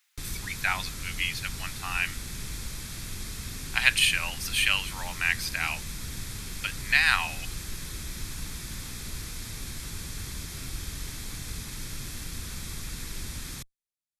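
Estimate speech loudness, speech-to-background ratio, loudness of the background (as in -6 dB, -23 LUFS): -26.5 LUFS, 11.0 dB, -37.5 LUFS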